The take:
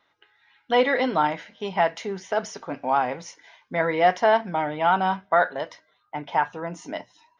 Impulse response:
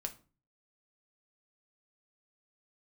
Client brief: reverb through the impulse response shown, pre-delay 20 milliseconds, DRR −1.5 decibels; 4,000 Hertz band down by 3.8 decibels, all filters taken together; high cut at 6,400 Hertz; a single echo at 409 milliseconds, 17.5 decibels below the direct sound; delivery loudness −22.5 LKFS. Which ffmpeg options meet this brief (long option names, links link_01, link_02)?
-filter_complex "[0:a]lowpass=6400,equalizer=frequency=4000:width_type=o:gain=-5.5,aecho=1:1:409:0.133,asplit=2[link_01][link_02];[1:a]atrim=start_sample=2205,adelay=20[link_03];[link_02][link_03]afir=irnorm=-1:irlink=0,volume=2.5dB[link_04];[link_01][link_04]amix=inputs=2:normalize=0,volume=-2.5dB"